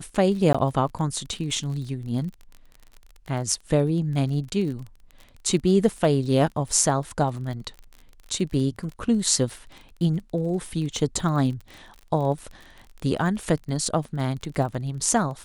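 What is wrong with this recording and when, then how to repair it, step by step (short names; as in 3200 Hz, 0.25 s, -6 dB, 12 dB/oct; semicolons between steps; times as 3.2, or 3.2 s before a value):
crackle 32/s -33 dBFS
0.53–0.55 gap 15 ms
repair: de-click; interpolate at 0.53, 15 ms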